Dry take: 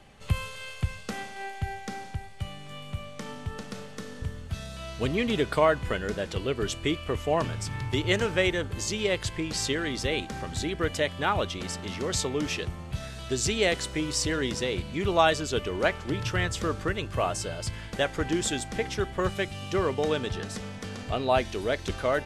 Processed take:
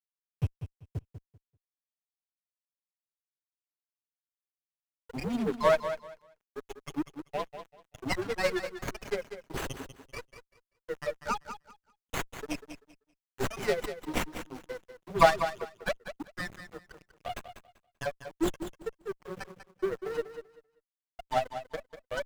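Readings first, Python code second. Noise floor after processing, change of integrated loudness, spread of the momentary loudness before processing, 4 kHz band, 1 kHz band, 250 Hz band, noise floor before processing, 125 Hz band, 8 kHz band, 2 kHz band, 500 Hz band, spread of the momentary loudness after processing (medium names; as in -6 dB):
under -85 dBFS, -4.5 dB, 13 LU, -11.5 dB, -3.0 dB, -7.0 dB, -42 dBFS, -10.5 dB, -13.0 dB, -7.0 dB, -5.0 dB, 17 LU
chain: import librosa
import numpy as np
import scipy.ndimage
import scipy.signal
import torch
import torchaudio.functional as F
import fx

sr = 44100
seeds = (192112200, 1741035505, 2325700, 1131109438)

p1 = fx.bin_expand(x, sr, power=3.0)
p2 = scipy.signal.sosfilt(scipy.signal.butter(4, 88.0, 'highpass', fs=sr, output='sos'), p1)
p3 = fx.high_shelf(p2, sr, hz=4600.0, db=2.0)
p4 = fx.level_steps(p3, sr, step_db=21)
p5 = p3 + (p4 * librosa.db_to_amplitude(1.0))
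p6 = fx.dmg_noise_colour(p5, sr, seeds[0], colour='pink', level_db=-57.0)
p7 = fx.dispersion(p6, sr, late='lows', ms=130.0, hz=510.0)
p8 = np.sign(p7) * np.maximum(np.abs(p7) - 10.0 ** (-36.0 / 20.0), 0.0)
p9 = p8 + fx.echo_feedback(p8, sr, ms=194, feedback_pct=21, wet_db=-10.5, dry=0)
p10 = fx.running_max(p9, sr, window=9)
y = p10 * librosa.db_to_amplitude(3.0)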